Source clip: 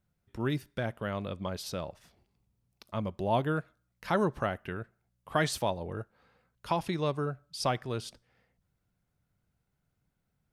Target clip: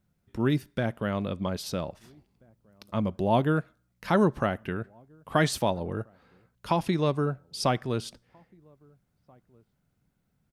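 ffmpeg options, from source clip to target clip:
ffmpeg -i in.wav -filter_complex "[0:a]equalizer=frequency=230:width=0.98:gain=5,asplit=2[link_01][link_02];[link_02]adelay=1633,volume=-30dB,highshelf=frequency=4000:gain=-36.7[link_03];[link_01][link_03]amix=inputs=2:normalize=0,volume=3dB" out.wav

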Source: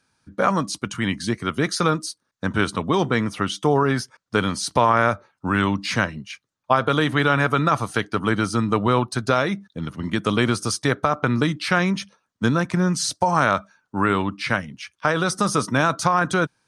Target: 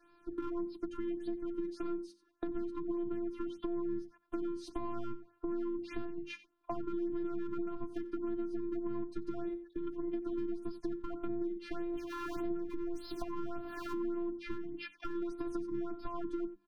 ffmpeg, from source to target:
ffmpeg -i in.wav -filter_complex "[0:a]asettb=1/sr,asplit=3[link_01][link_02][link_03];[link_01]atrim=end=11.934[link_04];[link_02]atrim=start=11.93:end=14.26,asetpts=PTS-STARTPTS,afade=type=in:duration=0.004:curve=qsin,afade=type=out:start_time=2.326:duration=0.004:curve=qsin,aeval=exprs='val(0)+0.5*0.0422*sgn(val(0))':channel_layout=same[link_05];[link_03]atrim=start=14.256[link_06];[link_04][link_05]acrossfade=duration=0.004:curve1=hsin:curve2=qsin[link_07];[link_07][link_06]acrossfade=duration=0.004:curve1=qsin:curve2=hsin,bass=frequency=250:gain=-4,treble=frequency=4000:gain=-13,asoftclip=type=hard:threshold=-15dB,equalizer=frequency=125:width_type=o:width=1:gain=4,equalizer=frequency=250:width_type=o:width=1:gain=9,equalizer=frequency=500:width_type=o:width=1:gain=-9,equalizer=frequency=1000:width_type=o:width=1:gain=3,equalizer=frequency=2000:width_type=o:width=1:gain=-10,equalizer=frequency=4000:width_type=o:width=1:gain=-4,equalizer=frequency=8000:width_type=o:width=1:gain=-9,aeval=exprs='0.501*(cos(1*acos(clip(val(0)/0.501,-1,1)))-cos(1*PI/2))+0.0891*(cos(5*acos(clip(val(0)/0.501,-1,1)))-cos(5*PI/2))':channel_layout=same,afftfilt=real='hypot(re,im)*cos(PI*b)':imag='0':win_size=512:overlap=0.75,acrossover=split=350[link_08][link_09];[link_09]acompressor=threshold=-42dB:ratio=10[link_10];[link_08][link_10]amix=inputs=2:normalize=0,aecho=1:1:5.8:0.96,aecho=1:1:90:0.106,acompressor=threshold=-37dB:ratio=4,bandreject=frequency=50:width_type=h:width=6,bandreject=frequency=100:width_type=h:width=6,bandreject=frequency=150:width_type=h:width=6,bandreject=frequency=200:width_type=h:width=6,bandreject=frequency=250:width_type=h:width=6,bandreject=frequency=300:width_type=h:width=6,bandreject=frequency=350:width_type=h:width=6,afftfilt=real='re*(1-between(b*sr/1024,530*pow(7700/530,0.5+0.5*sin(2*PI*1.7*pts/sr))/1.41,530*pow(7700/530,0.5+0.5*sin(2*PI*1.7*pts/sr))*1.41))':imag='im*(1-between(b*sr/1024,530*pow(7700/530,0.5+0.5*sin(2*PI*1.7*pts/sr))/1.41,530*pow(7700/530,0.5+0.5*sin(2*PI*1.7*pts/sr))*1.41))':win_size=1024:overlap=0.75,volume=1dB" out.wav

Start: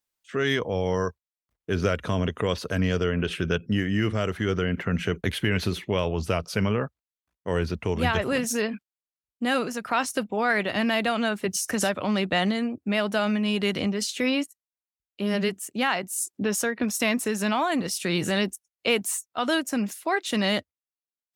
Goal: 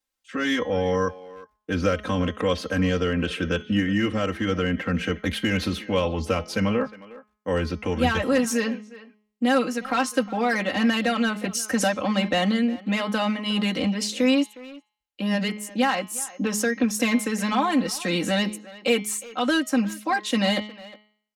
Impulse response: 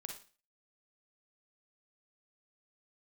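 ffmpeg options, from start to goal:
-filter_complex "[0:a]aecho=1:1:3.8:0.94,bandreject=frequency=211.2:width_type=h:width=4,bandreject=frequency=422.4:width_type=h:width=4,bandreject=frequency=633.6:width_type=h:width=4,bandreject=frequency=844.8:width_type=h:width=4,bandreject=frequency=1056:width_type=h:width=4,bandreject=frequency=1267.2:width_type=h:width=4,bandreject=frequency=1478.4:width_type=h:width=4,bandreject=frequency=1689.6:width_type=h:width=4,bandreject=frequency=1900.8:width_type=h:width=4,bandreject=frequency=2112:width_type=h:width=4,bandreject=frequency=2323.2:width_type=h:width=4,bandreject=frequency=2534.4:width_type=h:width=4,bandreject=frequency=2745.6:width_type=h:width=4,bandreject=frequency=2956.8:width_type=h:width=4,bandreject=frequency=3168:width_type=h:width=4,bandreject=frequency=3379.2:width_type=h:width=4,bandreject=frequency=3590.4:width_type=h:width=4,bandreject=frequency=3801.6:width_type=h:width=4,bandreject=frequency=4012.8:width_type=h:width=4,bandreject=frequency=4224:width_type=h:width=4,bandreject=frequency=4435.2:width_type=h:width=4,bandreject=frequency=4646.4:width_type=h:width=4,bandreject=frequency=4857.6:width_type=h:width=4,bandreject=frequency=5068.8:width_type=h:width=4,bandreject=frequency=5280:width_type=h:width=4,bandreject=frequency=5491.2:width_type=h:width=4,bandreject=frequency=5702.4:width_type=h:width=4,bandreject=frequency=5913.6:width_type=h:width=4,bandreject=frequency=6124.8:width_type=h:width=4,bandreject=frequency=6336:width_type=h:width=4,bandreject=frequency=6547.2:width_type=h:width=4,acrossover=split=130|1200|3400[link_01][link_02][link_03][link_04];[link_03]asoftclip=type=hard:threshold=-27.5dB[link_05];[link_01][link_02][link_05][link_04]amix=inputs=4:normalize=0,highshelf=frequency=9900:gain=-7,asplit=2[link_06][link_07];[link_07]adelay=360,highpass=300,lowpass=3400,asoftclip=type=hard:threshold=-19.5dB,volume=-17dB[link_08];[link_06][link_08]amix=inputs=2:normalize=0"

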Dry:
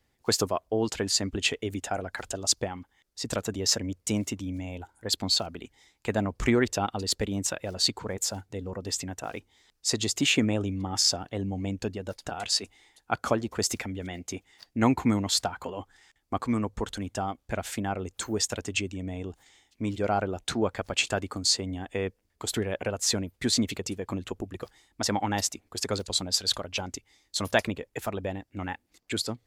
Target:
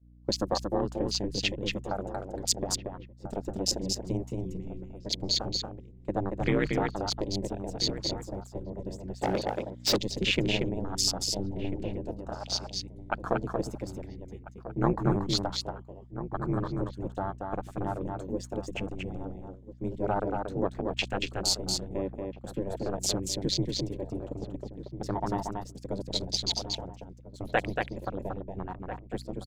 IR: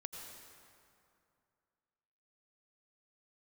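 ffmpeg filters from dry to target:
-filter_complex "[0:a]acrossover=split=7300[link_01][link_02];[link_01]adynamicequalizer=threshold=0.00398:dfrequency=270:dqfactor=5.5:tfrequency=270:tqfactor=5.5:attack=5:release=100:ratio=0.375:range=2:mode=cutabove:tftype=bell[link_03];[link_02]acrusher=bits=2:mode=log:mix=0:aa=0.000001[link_04];[link_03][link_04]amix=inputs=2:normalize=0,afwtdn=0.0282,aeval=exprs='val(0)*sin(2*PI*96*n/s)':channel_layout=same,aeval=exprs='val(0)+0.00708*(sin(2*PI*60*n/s)+sin(2*PI*2*60*n/s)/2+sin(2*PI*3*60*n/s)/3+sin(2*PI*4*60*n/s)/4+sin(2*PI*5*60*n/s)/5)':channel_layout=same,asplit=2[link_05][link_06];[link_06]adelay=1341,volume=-11dB,highshelf=frequency=4000:gain=-30.2[link_07];[link_05][link_07]amix=inputs=2:normalize=0,agate=range=-33dB:threshold=-36dB:ratio=3:detection=peak,asplit=2[link_08][link_09];[link_09]aecho=0:1:232:0.631[link_10];[link_08][link_10]amix=inputs=2:normalize=0,asplit=3[link_11][link_12][link_13];[link_11]afade=type=out:start_time=9.21:duration=0.02[link_14];[link_12]asplit=2[link_15][link_16];[link_16]highpass=frequency=720:poles=1,volume=30dB,asoftclip=type=tanh:threshold=-15dB[link_17];[link_15][link_17]amix=inputs=2:normalize=0,lowpass=frequency=6800:poles=1,volume=-6dB,afade=type=in:start_time=9.21:duration=0.02,afade=type=out:start_time=9.97:duration=0.02[link_18];[link_13]afade=type=in:start_time=9.97:duration=0.02[link_19];[link_14][link_18][link_19]amix=inputs=3:normalize=0"

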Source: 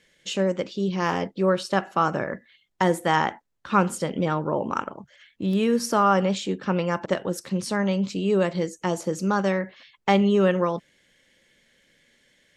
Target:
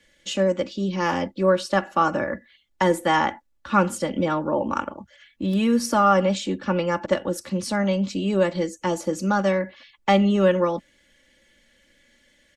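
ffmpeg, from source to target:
ffmpeg -i in.wav -filter_complex "[0:a]aecho=1:1:3.5:0.63,acrossover=split=130|520|2200[link_01][link_02][link_03][link_04];[link_01]acontrast=72[link_05];[link_05][link_02][link_03][link_04]amix=inputs=4:normalize=0" out.wav

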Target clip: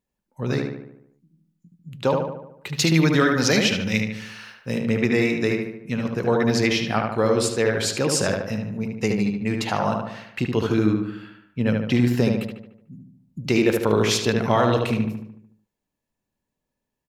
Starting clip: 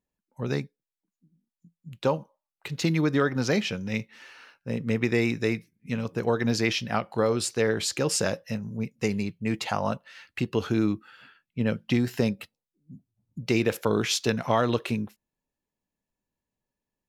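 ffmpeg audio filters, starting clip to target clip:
ffmpeg -i in.wav -filter_complex "[0:a]asettb=1/sr,asplit=3[link_01][link_02][link_03];[link_01]atrim=end=2.754[link_04];[link_02]atrim=start=2.75:end=4.85,asetpts=PTS-STARTPTS,afade=type=in:duration=0.004:curve=qsin,afade=type=out:start_time=2.096:duration=0.004:curve=qsin,highshelf=frequency=2400:gain=10[link_05];[link_03]atrim=start=4.846[link_06];[link_04][link_05]acrossfade=duration=0.004:curve1=hsin:curve2=qsin[link_07];[link_07][link_06]acrossfade=duration=0.004:curve1=qsin:curve2=hsin,asplit=2[link_08][link_09];[link_09]adelay=74,lowpass=frequency=2700:poles=1,volume=-3dB,asplit=2[link_10][link_11];[link_11]adelay=74,lowpass=frequency=2700:poles=1,volume=0.55,asplit=2[link_12][link_13];[link_13]adelay=74,lowpass=frequency=2700:poles=1,volume=0.55,asplit=2[link_14][link_15];[link_15]adelay=74,lowpass=frequency=2700:poles=1,volume=0.55,asplit=2[link_16][link_17];[link_17]adelay=74,lowpass=frequency=2700:poles=1,volume=0.55,asplit=2[link_18][link_19];[link_19]adelay=74,lowpass=frequency=2700:poles=1,volume=0.55,asplit=2[link_20][link_21];[link_21]adelay=74,lowpass=frequency=2700:poles=1,volume=0.55,asplit=2[link_22][link_23];[link_23]adelay=74,lowpass=frequency=2700:poles=1,volume=0.55[link_24];[link_08][link_10][link_12][link_14][link_16][link_18][link_20][link_22][link_24]amix=inputs=9:normalize=0,volume=3dB" out.wav

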